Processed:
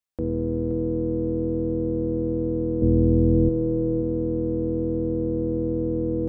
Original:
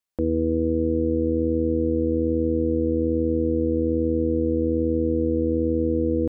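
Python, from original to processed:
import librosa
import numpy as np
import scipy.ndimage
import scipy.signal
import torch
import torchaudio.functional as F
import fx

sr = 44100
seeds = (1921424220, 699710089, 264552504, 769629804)

y = fx.octave_divider(x, sr, octaves=1, level_db=-3.0)
y = fx.low_shelf(y, sr, hz=350.0, db=11.0, at=(2.82, 3.49))
y = y + 10.0 ** (-10.5 / 20.0) * np.pad(y, (int(523 * sr / 1000.0), 0))[:len(y)]
y = y * librosa.db_to_amplitude(-4.0)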